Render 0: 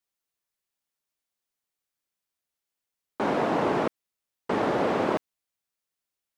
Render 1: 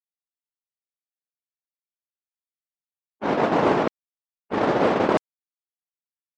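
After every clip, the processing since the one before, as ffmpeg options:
-af "agate=range=-53dB:threshold=-24dB:ratio=16:detection=peak,afftdn=nr=13:nf=-61,volume=7.5dB"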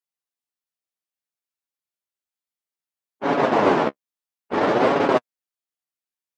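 -af "lowshelf=f=130:g=-8,flanger=delay=7:depth=9.3:regen=21:speed=0.6:shape=sinusoidal,volume=6dB"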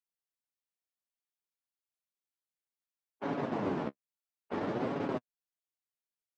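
-filter_complex "[0:a]acrossover=split=270[a][b];[b]acompressor=threshold=-30dB:ratio=4[c];[a][c]amix=inputs=2:normalize=0,volume=-7.5dB"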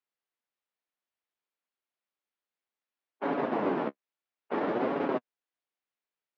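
-af "highpass=260,lowpass=3k,volume=6dB"

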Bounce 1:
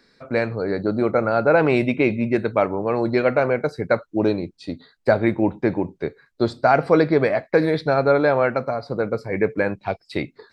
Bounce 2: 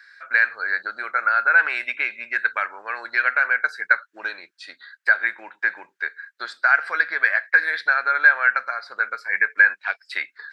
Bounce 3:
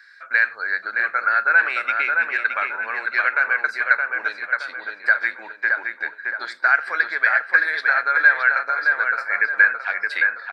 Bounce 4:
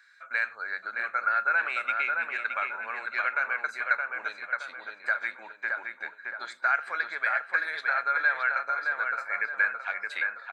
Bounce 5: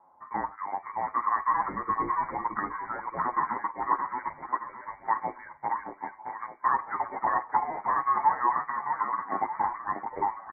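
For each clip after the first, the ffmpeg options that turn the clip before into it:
-af "acompressor=threshold=-19dB:ratio=2.5,highpass=f=1.6k:t=q:w=8.2,volume=1dB"
-filter_complex "[0:a]asplit=2[a][b];[b]adelay=619,lowpass=f=2.4k:p=1,volume=-3dB,asplit=2[c][d];[d]adelay=619,lowpass=f=2.4k:p=1,volume=0.47,asplit=2[e][f];[f]adelay=619,lowpass=f=2.4k:p=1,volume=0.47,asplit=2[g][h];[h]adelay=619,lowpass=f=2.4k:p=1,volume=0.47,asplit=2[i][j];[j]adelay=619,lowpass=f=2.4k:p=1,volume=0.47,asplit=2[k][l];[l]adelay=619,lowpass=f=2.4k:p=1,volume=0.47[m];[a][c][e][g][i][k][m]amix=inputs=7:normalize=0"
-af "superequalizer=6b=0.631:7b=0.708:11b=0.562:14b=0.447:15b=1.78,volume=-6dB"
-filter_complex "[0:a]lowpass=f=2.1k:t=q:w=0.5098,lowpass=f=2.1k:t=q:w=0.6013,lowpass=f=2.1k:t=q:w=0.9,lowpass=f=2.1k:t=q:w=2.563,afreqshift=-2500,asplit=2[a][b];[b]adelay=8.8,afreqshift=-0.94[c];[a][c]amix=inputs=2:normalize=1,volume=3.5dB"

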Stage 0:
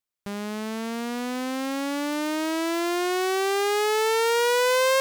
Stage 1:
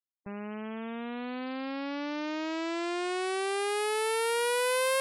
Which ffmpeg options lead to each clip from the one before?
-af "afftfilt=real='re*gte(hypot(re,im),0.02)':imag='im*gte(hypot(re,im),0.02)':win_size=1024:overlap=0.75,equalizer=f=2.5k:t=o:w=0.33:g=3,equalizer=f=6.3k:t=o:w=0.33:g=-6,equalizer=f=10k:t=o:w=0.33:g=12,areverse,acompressor=mode=upward:threshold=-30dB:ratio=2.5,areverse,volume=-7dB"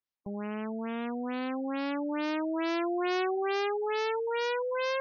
-af "alimiter=level_in=1dB:limit=-24dB:level=0:latency=1,volume=-1dB,afftfilt=real='re*lt(b*sr/1024,760*pow(6800/760,0.5+0.5*sin(2*PI*2.3*pts/sr)))':imag='im*lt(b*sr/1024,760*pow(6800/760,0.5+0.5*sin(2*PI*2.3*pts/sr)))':win_size=1024:overlap=0.75,volume=3dB"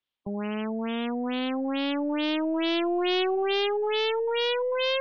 -filter_complex "[0:a]acrossover=split=170|870|2500[a][b][c][d];[b]aeval=exprs='0.0562*(cos(1*acos(clip(val(0)/0.0562,-1,1)))-cos(1*PI/2))+0.00501*(cos(2*acos(clip(val(0)/0.0562,-1,1)))-cos(2*PI/2))+0.000355*(cos(8*acos(clip(val(0)/0.0562,-1,1)))-cos(8*PI/2))':c=same[e];[c]alimiter=level_in=14.5dB:limit=-24dB:level=0:latency=1,volume=-14.5dB[f];[d]lowpass=f=3.3k:t=q:w=3.9[g];[a][e][f][g]amix=inputs=4:normalize=0,volume=5dB"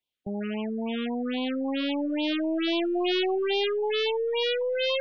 -af "afftfilt=real='re*(1-between(b*sr/1024,780*pow(1600/780,0.5+0.5*sin(2*PI*3.7*pts/sr))/1.41,780*pow(1600/780,0.5+0.5*sin(2*PI*3.7*pts/sr))*1.41))':imag='im*(1-between(b*sr/1024,780*pow(1600/780,0.5+0.5*sin(2*PI*3.7*pts/sr))/1.41,780*pow(1600/780,0.5+0.5*sin(2*PI*3.7*pts/sr))*1.41))':win_size=1024:overlap=0.75"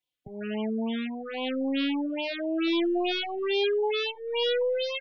-filter_complex "[0:a]asplit=2[a][b];[b]adelay=3.5,afreqshift=-0.69[c];[a][c]amix=inputs=2:normalize=1,volume=2dB"

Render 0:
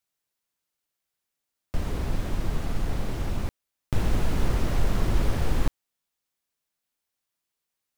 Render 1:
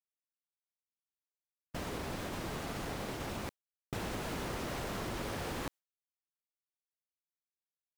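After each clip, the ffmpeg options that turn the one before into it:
-af "agate=range=-33dB:threshold=-26dB:ratio=3:detection=peak,highpass=f=360:p=1,acompressor=threshold=-36dB:ratio=6,volume=1dB"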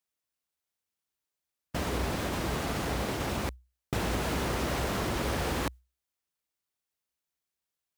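-af "highpass=46,equalizer=f=62:t=o:w=0.3:g=11.5,volume=7.5dB"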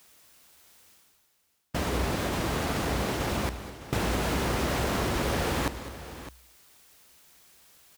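-af "areverse,acompressor=mode=upward:threshold=-37dB:ratio=2.5,areverse,aecho=1:1:204|609:0.211|0.2,volume=2.5dB"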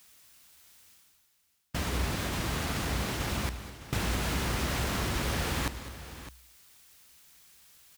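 -af "equalizer=f=500:w=0.55:g=-7.5"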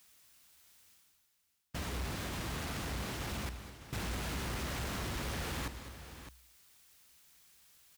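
-af "asoftclip=type=tanh:threshold=-25.5dB,volume=-5.5dB"

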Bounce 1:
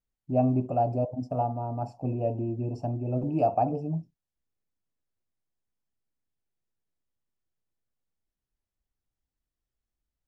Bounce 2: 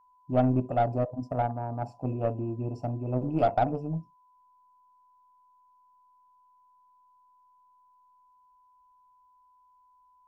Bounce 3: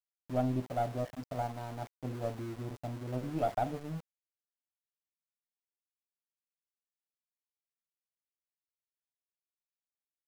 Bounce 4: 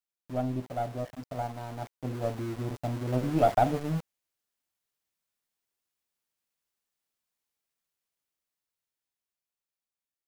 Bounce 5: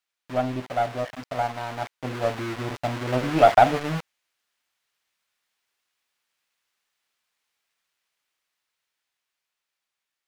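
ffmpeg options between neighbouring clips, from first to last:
-af "aeval=exprs='0.224*(cos(1*acos(clip(val(0)/0.224,-1,1)))-cos(1*PI/2))+0.0398*(cos(2*acos(clip(val(0)/0.224,-1,1)))-cos(2*PI/2))+0.00794*(cos(7*acos(clip(val(0)/0.224,-1,1)))-cos(7*PI/2))':c=same,aeval=exprs='val(0)+0.001*sin(2*PI*1000*n/s)':c=same"
-af "aeval=exprs='val(0)*gte(abs(val(0)),0.0141)':c=same,volume=-7.5dB"
-af "dynaudnorm=f=560:g=9:m=9.5dB"
-af "equalizer=f=2.1k:w=0.3:g=14"

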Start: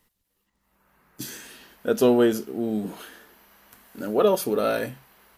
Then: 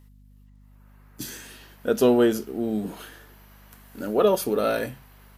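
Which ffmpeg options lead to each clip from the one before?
-af "aeval=exprs='val(0)+0.00282*(sin(2*PI*50*n/s)+sin(2*PI*2*50*n/s)/2+sin(2*PI*3*50*n/s)/3+sin(2*PI*4*50*n/s)/4+sin(2*PI*5*50*n/s)/5)':c=same"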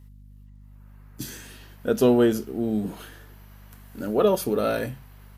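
-af "equalizer=f=82:t=o:w=2.4:g=8,volume=-1.5dB"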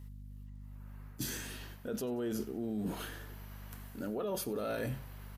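-af "alimiter=limit=-20dB:level=0:latency=1:release=27,areverse,acompressor=threshold=-34dB:ratio=6,areverse,aecho=1:1:92|184|276|368:0.075|0.039|0.0203|0.0105"

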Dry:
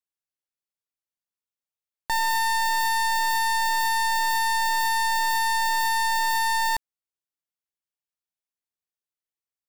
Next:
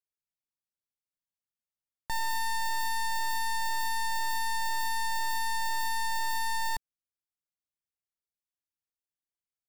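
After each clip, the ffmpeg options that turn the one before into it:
-af "bass=f=250:g=9,treble=f=4k:g=2,volume=-9dB"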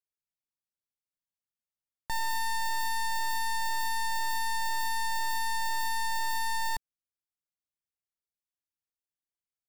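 -af anull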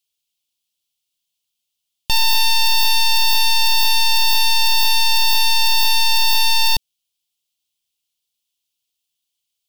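-af "highshelf=f=2.3k:t=q:w=3:g=10,aeval=exprs='0.15*(cos(1*acos(clip(val(0)/0.15,-1,1)))-cos(1*PI/2))+0.0473*(cos(8*acos(clip(val(0)/0.15,-1,1)))-cos(8*PI/2))':c=same,volume=6dB"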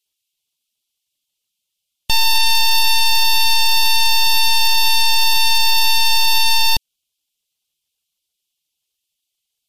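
-af "volume=2dB" -ar 48000 -c:a libmp3lame -b:a 56k

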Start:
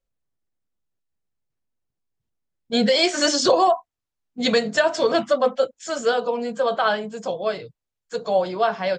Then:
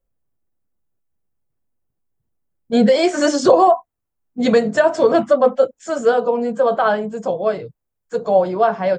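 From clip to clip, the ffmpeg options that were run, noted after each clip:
-af "equalizer=f=4.1k:w=0.52:g=-14,volume=7dB"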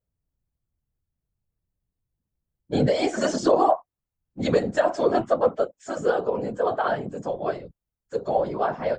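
-af "afftfilt=real='hypot(re,im)*cos(2*PI*random(0))':imag='hypot(re,im)*sin(2*PI*random(1))':win_size=512:overlap=0.75,volume=-1.5dB"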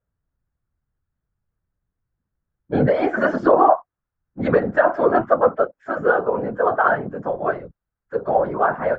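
-af "lowpass=f=1.5k:t=q:w=2.7,volume=3dB"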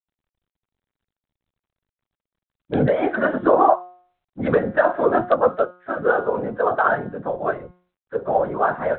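-af "bandreject=f=179.5:t=h:w=4,bandreject=f=359:t=h:w=4,bandreject=f=538.5:t=h:w=4,bandreject=f=718:t=h:w=4,bandreject=f=897.5:t=h:w=4,bandreject=f=1.077k:t=h:w=4,bandreject=f=1.2565k:t=h:w=4,bandreject=f=1.436k:t=h:w=4,bandreject=f=1.6155k:t=h:w=4,bandreject=f=1.795k:t=h:w=4,bandreject=f=1.9745k:t=h:w=4,bandreject=f=2.154k:t=h:w=4,bandreject=f=2.3335k:t=h:w=4,bandreject=f=2.513k:t=h:w=4,bandreject=f=2.6925k:t=h:w=4,bandreject=f=2.872k:t=h:w=4,bandreject=f=3.0515k:t=h:w=4,bandreject=f=3.231k:t=h:w=4,bandreject=f=3.4105k:t=h:w=4,bandreject=f=3.59k:t=h:w=4,bandreject=f=3.7695k:t=h:w=4,bandreject=f=3.949k:t=h:w=4,bandreject=f=4.1285k:t=h:w=4,bandreject=f=4.308k:t=h:w=4,bandreject=f=4.4875k:t=h:w=4,bandreject=f=4.667k:t=h:w=4,bandreject=f=4.8465k:t=h:w=4,bandreject=f=5.026k:t=h:w=4,bandreject=f=5.2055k:t=h:w=4,bandreject=f=5.385k:t=h:w=4,bandreject=f=5.5645k:t=h:w=4,bandreject=f=5.744k:t=h:w=4,bandreject=f=5.9235k:t=h:w=4,bandreject=f=6.103k:t=h:w=4,bandreject=f=6.2825k:t=h:w=4,bandreject=f=6.462k:t=h:w=4,bandreject=f=6.6415k:t=h:w=4,bandreject=f=6.821k:t=h:w=4,volume=-1dB" -ar 8000 -c:a adpcm_g726 -b:a 40k

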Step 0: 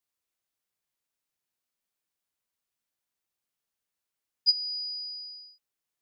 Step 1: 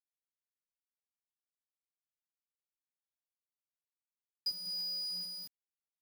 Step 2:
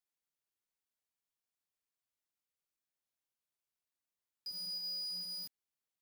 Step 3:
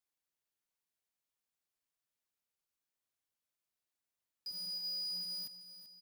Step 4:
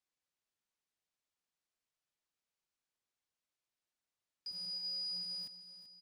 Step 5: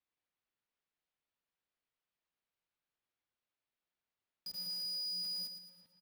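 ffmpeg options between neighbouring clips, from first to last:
-af "acompressor=threshold=-35dB:ratio=8,acrusher=bits=7:mix=0:aa=0.000001"
-af "alimiter=level_in=15.5dB:limit=-24dB:level=0:latency=1:release=65,volume=-15.5dB,volume=1.5dB"
-af "aecho=1:1:385|770|1155|1540:0.251|0.108|0.0464|0.02"
-af "lowpass=7.7k"
-filter_complex "[0:a]acrossover=split=380|4500[a][b][c];[b]acompressor=threshold=-58dB:ratio=6[d];[c]acrusher=bits=7:mix=0:aa=0.000001[e];[a][d][e]amix=inputs=3:normalize=0,aecho=1:1:113|226|339|452|565|678:0.355|0.177|0.0887|0.0444|0.0222|0.0111"

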